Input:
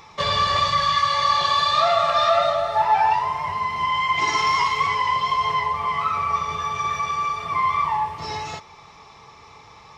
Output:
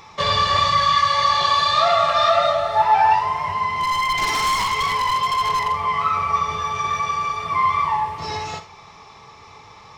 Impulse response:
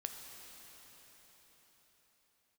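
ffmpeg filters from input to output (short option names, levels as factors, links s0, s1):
-filter_complex "[0:a]asettb=1/sr,asplit=3[s0][s1][s2];[s0]atrim=end=3.784[s3];[s1]atrim=start=3.78:end=5.83,asetpts=PTS-STARTPTS,afade=t=in:d=0.004:c=qsin,afade=t=out:st=2.046:d=0.004:c=qsin,aeval=exprs='0.126*(abs(mod(val(0)/0.126+3,4)-2)-1)':c=same[s4];[s2]atrim=start=5.826[s5];[s3][s4]acrossfade=d=0.004:c1=hsin:c2=qsin[s6];[s6][s5]acrossfade=d=0.004:c1=qsin:c2=hsin[s7];[1:a]atrim=start_sample=2205,atrim=end_sample=3969[s8];[s7][s8]afir=irnorm=-1:irlink=0,volume=1.78"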